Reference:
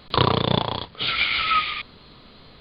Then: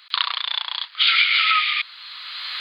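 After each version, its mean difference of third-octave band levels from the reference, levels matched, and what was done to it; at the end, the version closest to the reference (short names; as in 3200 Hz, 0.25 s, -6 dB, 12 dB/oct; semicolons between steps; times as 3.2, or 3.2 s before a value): 14.0 dB: recorder AGC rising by 20 dB/s; HPF 1400 Hz 24 dB/oct; gain +3 dB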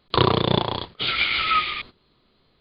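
4.0 dB: gate -39 dBFS, range -16 dB; bell 360 Hz +7.5 dB 0.24 oct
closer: second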